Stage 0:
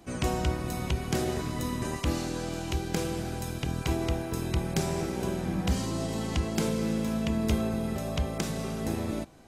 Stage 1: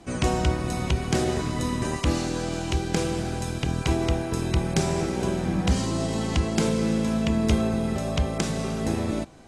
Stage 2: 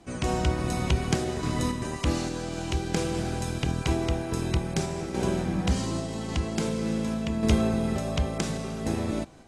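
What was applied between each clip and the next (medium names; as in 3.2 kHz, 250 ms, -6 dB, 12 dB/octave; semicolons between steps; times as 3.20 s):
low-pass 10 kHz 24 dB/octave; trim +5 dB
random-step tremolo 3.5 Hz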